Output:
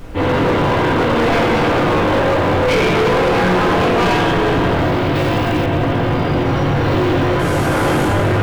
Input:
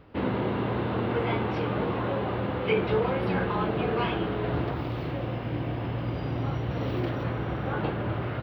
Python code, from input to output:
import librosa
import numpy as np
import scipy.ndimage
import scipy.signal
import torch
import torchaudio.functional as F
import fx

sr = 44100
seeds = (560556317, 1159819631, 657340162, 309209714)

y = fx.delta_mod(x, sr, bps=64000, step_db=-38.5, at=(7.39, 8.05))
y = fx.highpass(y, sr, hz=80.0, slope=6)
y = fx.doubler(y, sr, ms=22.0, db=-4.0)
y = fx.rev_fdn(y, sr, rt60_s=2.0, lf_ratio=0.85, hf_ratio=0.8, size_ms=59.0, drr_db=-9.0)
y = np.clip(y, -10.0 ** (-19.5 / 20.0), 10.0 ** (-19.5 / 20.0))
y = fx.high_shelf(y, sr, hz=4300.0, db=11.0, at=(5.15, 5.66))
y = fx.dmg_noise_colour(y, sr, seeds[0], colour='brown', level_db=-38.0)
y = F.gain(torch.from_numpy(y), 7.5).numpy()